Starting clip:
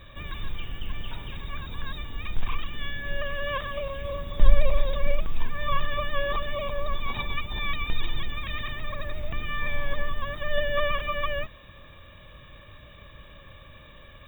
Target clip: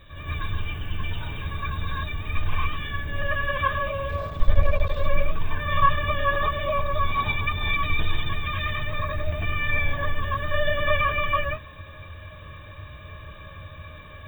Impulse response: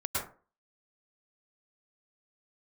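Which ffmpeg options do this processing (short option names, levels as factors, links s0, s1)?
-filter_complex "[0:a]asettb=1/sr,asplit=3[s0][s1][s2];[s0]atrim=end=4.094[s3];[s1]atrim=start=4.09:end=4.95,asetpts=PTS-STARTPTS,afade=t=in:d=0.004:c=qsin,afade=t=out:st=0.856:d=0.004:c=qsin,aeval=exprs='max(val(0),0)':c=same[s4];[s2]atrim=start=4.946[s5];[s3][s4]acrossfade=d=0.004:c1=hsin:c2=qsin[s6];[s6][s5]acrossfade=d=0.004:c1=qsin:c2=hsin[s7];[1:a]atrim=start_sample=2205,atrim=end_sample=6174,asetrate=48510,aresample=44100[s8];[s7][s8]afir=irnorm=-1:irlink=0"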